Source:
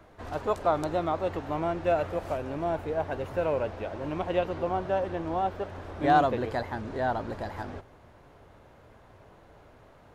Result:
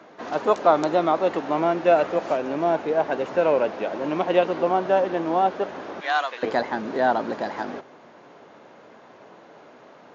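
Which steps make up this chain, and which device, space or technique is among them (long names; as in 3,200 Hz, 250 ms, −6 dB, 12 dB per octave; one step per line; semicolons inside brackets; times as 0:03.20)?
0:06.00–0:06.43: high-pass filter 1,400 Hz 12 dB per octave
Bluetooth headset (high-pass filter 190 Hz 24 dB per octave; downsampling to 16,000 Hz; level +8 dB; SBC 64 kbit/s 16,000 Hz)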